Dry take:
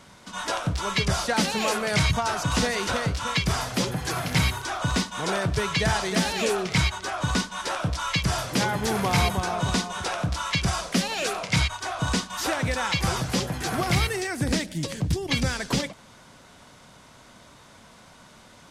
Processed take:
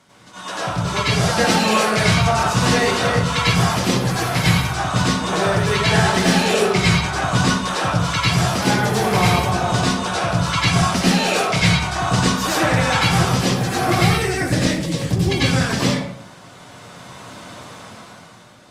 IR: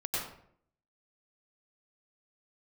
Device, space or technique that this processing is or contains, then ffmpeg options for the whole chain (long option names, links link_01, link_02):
far-field microphone of a smart speaker: -filter_complex "[1:a]atrim=start_sample=2205[link_01];[0:a][link_01]afir=irnorm=-1:irlink=0,highpass=frequency=82:width=0.5412,highpass=frequency=82:width=1.3066,dynaudnorm=framelen=260:gausssize=7:maxgain=12dB,volume=-2.5dB" -ar 48000 -c:a libopus -b:a 48k